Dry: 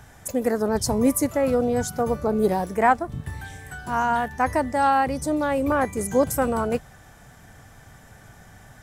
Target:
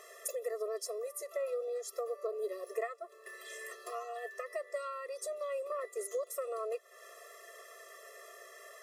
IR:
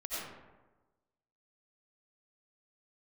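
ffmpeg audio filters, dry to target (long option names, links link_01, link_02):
-filter_complex "[0:a]acompressor=threshold=-34dB:ratio=16,asettb=1/sr,asplit=3[link_01][link_02][link_03];[link_01]atrim=end=3.894[link_04];[link_02]atrim=start=3.89:end=4.31,asetpts=PTS-STARTPTS,afade=type=in:duration=0.004:curve=qsin,afade=type=out:start_time=0.416:duration=0.004:curve=qsin,aecho=1:1:4.6:0.8,atrim=end_sample=18522[link_05];[link_03]atrim=start=4.306[link_06];[link_04][link_05]acrossfade=duration=0.004:curve1=hsin:curve2=qsin[link_07];[link_07][link_06]acrossfade=duration=0.004:curve1=qsin:curve2=hsin,afftfilt=real='re*eq(mod(floor(b*sr/1024/350),2),1)':imag='im*eq(mod(floor(b*sr/1024/350),2),1)':win_size=1024:overlap=0.75,volume=3dB"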